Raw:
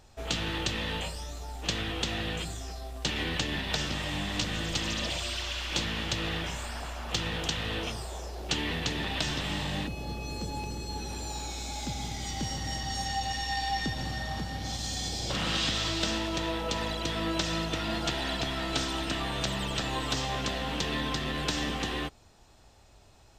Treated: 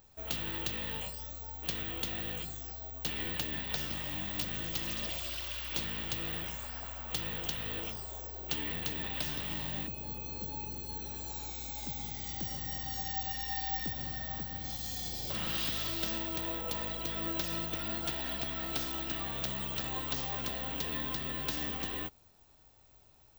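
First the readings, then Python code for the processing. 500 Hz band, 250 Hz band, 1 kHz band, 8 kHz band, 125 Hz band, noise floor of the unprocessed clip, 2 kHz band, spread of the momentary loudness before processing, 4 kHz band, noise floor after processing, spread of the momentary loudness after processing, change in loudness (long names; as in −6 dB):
−8.0 dB, −8.0 dB, −8.0 dB, −8.0 dB, −8.0 dB, −56 dBFS, −8.0 dB, 6 LU, −8.0 dB, −61 dBFS, 6 LU, −3.5 dB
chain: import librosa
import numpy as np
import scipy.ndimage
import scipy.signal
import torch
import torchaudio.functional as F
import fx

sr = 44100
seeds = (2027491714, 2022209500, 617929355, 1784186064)

y = (np.kron(x[::2], np.eye(2)[0]) * 2)[:len(x)]
y = y * 10.0 ** (-8.0 / 20.0)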